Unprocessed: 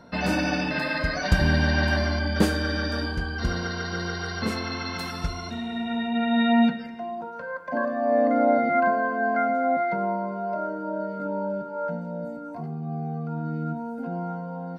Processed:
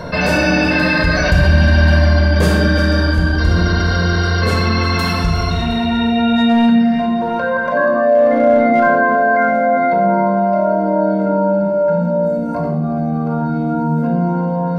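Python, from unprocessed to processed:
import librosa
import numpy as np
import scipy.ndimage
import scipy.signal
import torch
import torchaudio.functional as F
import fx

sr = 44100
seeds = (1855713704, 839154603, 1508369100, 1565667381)

p1 = 10.0 ** (-14.5 / 20.0) * (np.abs((x / 10.0 ** (-14.5 / 20.0) + 3.0) % 4.0 - 2.0) - 1.0)
p2 = x + (p1 * 10.0 ** (-8.5 / 20.0))
p3 = fx.echo_feedback(p2, sr, ms=357, feedback_pct=53, wet_db=-15.0)
p4 = fx.room_shoebox(p3, sr, seeds[0], volume_m3=3700.0, walls='furnished', distance_m=5.4)
p5 = fx.env_flatten(p4, sr, amount_pct=50)
y = p5 * 10.0 ** (-2.0 / 20.0)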